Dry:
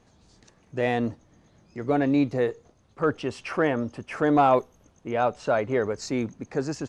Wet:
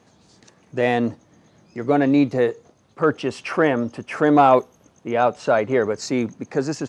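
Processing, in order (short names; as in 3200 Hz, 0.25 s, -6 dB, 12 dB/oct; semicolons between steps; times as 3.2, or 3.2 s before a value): HPF 120 Hz 12 dB/oct; gain +5.5 dB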